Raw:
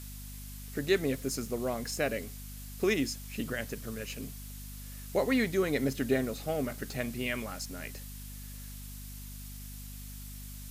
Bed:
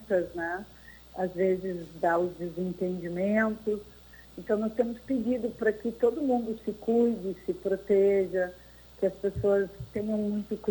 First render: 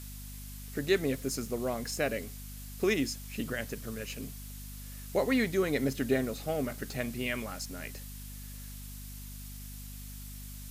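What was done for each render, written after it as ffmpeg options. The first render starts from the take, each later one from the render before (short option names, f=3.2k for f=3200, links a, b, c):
-af anull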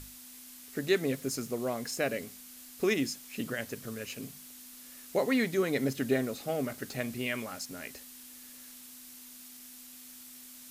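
-af "bandreject=f=50:t=h:w=6,bandreject=f=100:t=h:w=6,bandreject=f=150:t=h:w=6,bandreject=f=200:t=h:w=6"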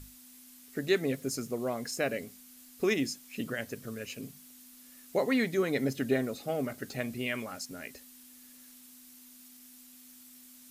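-af "afftdn=nr=6:nf=-50"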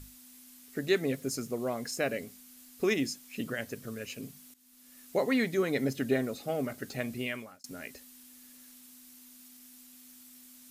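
-filter_complex "[0:a]asplit=3[a][b][c];[a]atrim=end=4.54,asetpts=PTS-STARTPTS,afade=t=out:st=4.536:d=0.004:c=hsin:silence=0.16788[d];[b]atrim=start=4.54:end=7.64,asetpts=PTS-STARTPTS,afade=t=in:d=0.48:silence=0.16788,afade=t=out:st=2.67:d=0.43[e];[c]atrim=start=7.64,asetpts=PTS-STARTPTS,afade=t=in:d=0.004:c=hsin[f];[d][e][f]concat=n=3:v=0:a=1"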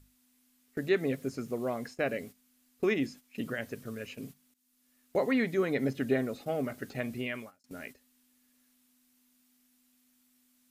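-filter_complex "[0:a]acrossover=split=3300[a][b];[b]acompressor=threshold=-55dB:ratio=4:attack=1:release=60[c];[a][c]amix=inputs=2:normalize=0,agate=range=-12dB:threshold=-46dB:ratio=16:detection=peak"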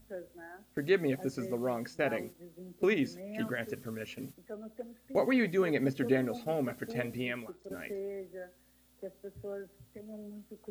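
-filter_complex "[1:a]volume=-16.5dB[a];[0:a][a]amix=inputs=2:normalize=0"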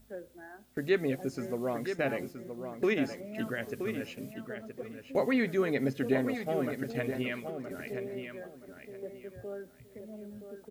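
-filter_complex "[0:a]asplit=2[a][b];[b]adelay=972,lowpass=f=4.8k:p=1,volume=-8dB,asplit=2[c][d];[d]adelay=972,lowpass=f=4.8k:p=1,volume=0.23,asplit=2[e][f];[f]adelay=972,lowpass=f=4.8k:p=1,volume=0.23[g];[a][c][e][g]amix=inputs=4:normalize=0"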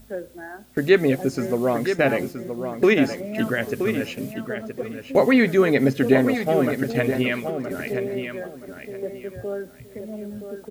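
-af "volume=11.5dB"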